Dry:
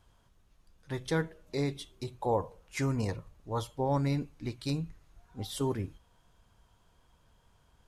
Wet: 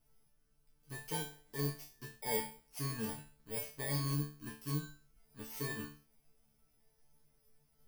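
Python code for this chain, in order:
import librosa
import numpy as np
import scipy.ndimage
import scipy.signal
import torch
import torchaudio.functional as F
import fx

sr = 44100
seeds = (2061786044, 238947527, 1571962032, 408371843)

y = fx.bit_reversed(x, sr, seeds[0], block=32)
y = fx.resonator_bank(y, sr, root=50, chord='fifth', decay_s=0.37)
y = F.gain(torch.from_numpy(y), 8.0).numpy()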